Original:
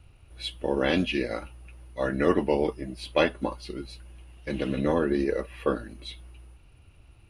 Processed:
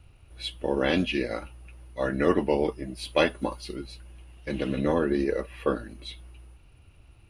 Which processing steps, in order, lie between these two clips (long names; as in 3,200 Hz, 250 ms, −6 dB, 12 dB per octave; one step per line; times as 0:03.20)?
0:02.95–0:03.76: high-shelf EQ 6,000 Hz +7.5 dB